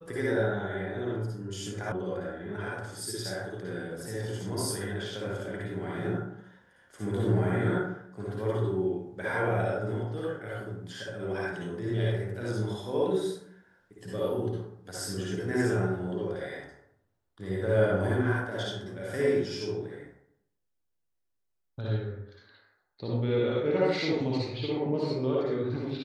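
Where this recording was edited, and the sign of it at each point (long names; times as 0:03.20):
0:01.92: cut off before it has died away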